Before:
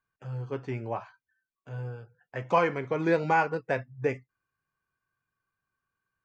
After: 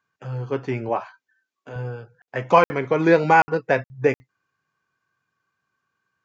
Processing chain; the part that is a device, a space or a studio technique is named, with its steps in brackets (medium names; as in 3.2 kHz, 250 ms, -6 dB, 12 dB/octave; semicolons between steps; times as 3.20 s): call with lost packets (high-pass 130 Hz 12 dB/octave; resampled via 16 kHz; lost packets of 60 ms random); 0.89–1.76 s: resonant low shelf 200 Hz -7 dB, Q 1.5; trim +9 dB